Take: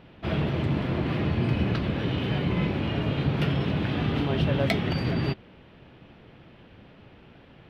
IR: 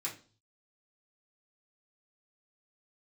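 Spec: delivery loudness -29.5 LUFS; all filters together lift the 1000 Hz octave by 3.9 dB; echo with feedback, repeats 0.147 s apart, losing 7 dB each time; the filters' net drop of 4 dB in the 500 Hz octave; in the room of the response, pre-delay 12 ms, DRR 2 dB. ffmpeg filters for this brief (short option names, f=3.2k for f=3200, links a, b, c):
-filter_complex "[0:a]equalizer=f=500:t=o:g=-7.5,equalizer=f=1k:t=o:g=7.5,aecho=1:1:147|294|441|588|735:0.447|0.201|0.0905|0.0407|0.0183,asplit=2[a][b];[1:a]atrim=start_sample=2205,adelay=12[c];[b][c]afir=irnorm=-1:irlink=0,volume=-3.5dB[d];[a][d]amix=inputs=2:normalize=0,volume=-5dB"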